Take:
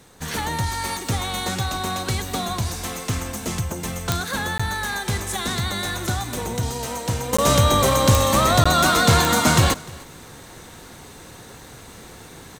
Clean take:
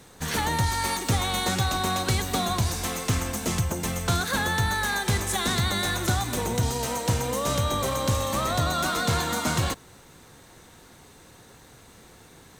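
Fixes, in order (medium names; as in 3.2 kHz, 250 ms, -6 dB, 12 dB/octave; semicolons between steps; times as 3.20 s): de-click; interpolate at 4.58/7.37/8.64 s, 15 ms; inverse comb 301 ms -22.5 dB; trim 0 dB, from 7.33 s -9 dB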